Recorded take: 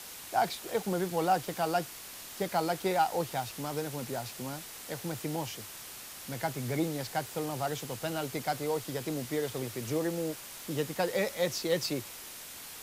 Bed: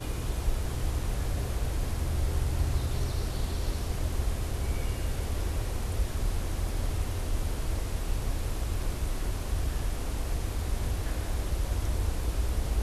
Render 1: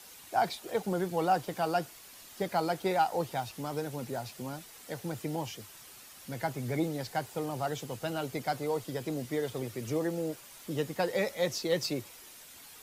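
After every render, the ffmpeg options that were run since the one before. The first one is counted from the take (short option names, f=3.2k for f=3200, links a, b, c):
-af "afftdn=nr=8:nf=-46"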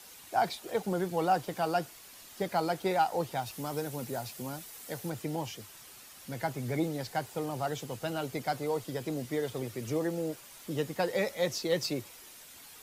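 -filter_complex "[0:a]asettb=1/sr,asplit=3[a][b][c];[a]atrim=end=3.464[d];[b]atrim=start=3.46:end=5.1,asetpts=PTS-STARTPTS,afade=t=in:d=0.004:c=qsin,afade=t=out:st=1.636:d=0.004:c=qsin,highshelf=f=8.3k:g=7.5[e];[c]atrim=start=5.096[f];[d][e]acrossfade=d=0.004:c1=hsin:c2=qsin[g];[g][f]acrossfade=d=0.004:c1=qsin:c2=hsin"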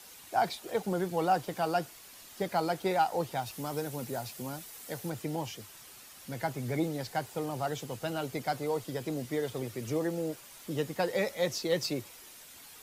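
-af anull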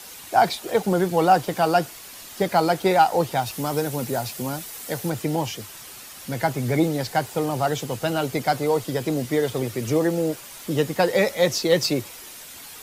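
-af "volume=10.5dB"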